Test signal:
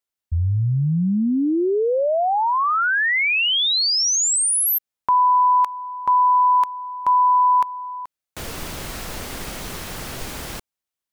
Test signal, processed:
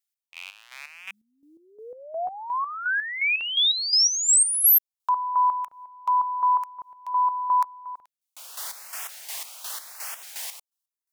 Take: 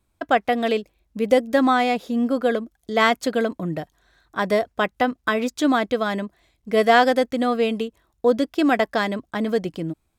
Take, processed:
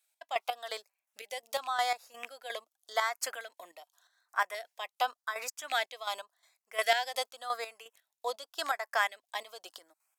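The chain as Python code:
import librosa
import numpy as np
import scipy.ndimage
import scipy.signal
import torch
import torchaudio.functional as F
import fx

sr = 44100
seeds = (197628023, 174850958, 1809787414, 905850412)

y = fx.rattle_buzz(x, sr, strikes_db=-22.0, level_db=-20.0)
y = scipy.signal.sosfilt(scipy.signal.butter(4, 770.0, 'highpass', fs=sr, output='sos'), y)
y = fx.high_shelf(y, sr, hz=3900.0, db=8.0)
y = fx.chopper(y, sr, hz=2.8, depth_pct=65, duty_pct=40)
y = fx.filter_lfo_notch(y, sr, shape='saw_up', hz=0.88, low_hz=980.0, high_hz=4600.0, q=1.4)
y = F.gain(torch.from_numpy(y), -3.5).numpy()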